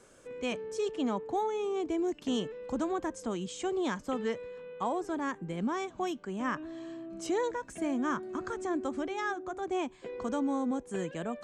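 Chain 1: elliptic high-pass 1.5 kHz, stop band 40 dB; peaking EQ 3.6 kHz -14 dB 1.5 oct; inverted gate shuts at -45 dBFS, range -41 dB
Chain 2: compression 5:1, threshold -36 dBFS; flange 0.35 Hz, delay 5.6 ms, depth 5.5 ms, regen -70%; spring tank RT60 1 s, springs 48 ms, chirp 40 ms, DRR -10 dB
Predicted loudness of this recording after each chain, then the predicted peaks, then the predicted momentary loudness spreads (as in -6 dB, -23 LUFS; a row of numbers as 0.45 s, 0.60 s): -63.0 LUFS, -34.0 LUFS; -40.0 dBFS, -19.0 dBFS; 8 LU, 5 LU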